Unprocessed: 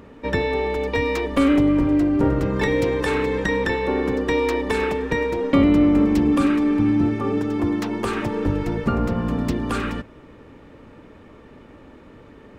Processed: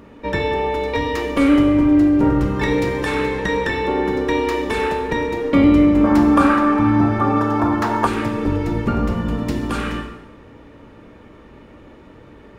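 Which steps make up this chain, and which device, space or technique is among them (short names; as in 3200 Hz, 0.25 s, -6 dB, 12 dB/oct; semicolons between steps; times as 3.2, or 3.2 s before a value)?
bathroom (reverb RT60 0.95 s, pre-delay 3 ms, DRR 2 dB); notch 7800 Hz, Q 23; 6.04–8.07 band shelf 1000 Hz +11.5 dB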